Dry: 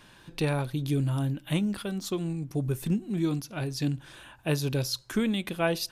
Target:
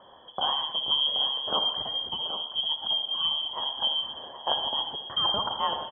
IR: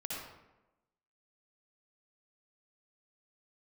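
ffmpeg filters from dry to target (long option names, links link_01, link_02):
-filter_complex "[0:a]firequalizer=gain_entry='entry(180,0);entry(300,5);entry(490,-23);entry(950,-29);entry(2300,14)':delay=0.05:min_phase=1,asplit=2[link_01][link_02];[1:a]atrim=start_sample=2205[link_03];[link_02][link_03]afir=irnorm=-1:irlink=0,volume=-3dB[link_04];[link_01][link_04]amix=inputs=2:normalize=0,lowpass=frequency=2900:width_type=q:width=0.5098,lowpass=frequency=2900:width_type=q:width=0.6013,lowpass=frequency=2900:width_type=q:width=0.9,lowpass=frequency=2900:width_type=q:width=2.563,afreqshift=-3400,highpass=frequency=93:poles=1,asplit=2[link_05][link_06];[link_06]adelay=777,lowpass=frequency=2000:poles=1,volume=-9dB,asplit=2[link_07][link_08];[link_08]adelay=777,lowpass=frequency=2000:poles=1,volume=0.18,asplit=2[link_09][link_10];[link_10]adelay=777,lowpass=frequency=2000:poles=1,volume=0.18[link_11];[link_05][link_07][link_09][link_11]amix=inputs=4:normalize=0,volume=-5.5dB"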